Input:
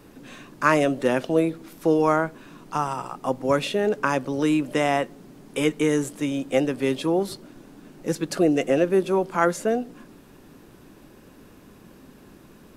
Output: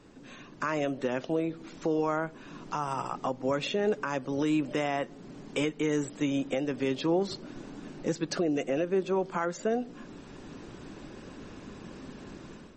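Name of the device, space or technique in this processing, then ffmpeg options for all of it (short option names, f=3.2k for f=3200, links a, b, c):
low-bitrate web radio: -af "dynaudnorm=f=330:g=3:m=10dB,alimiter=limit=-13dB:level=0:latency=1:release=390,volume=-5.5dB" -ar 44100 -c:a libmp3lame -b:a 32k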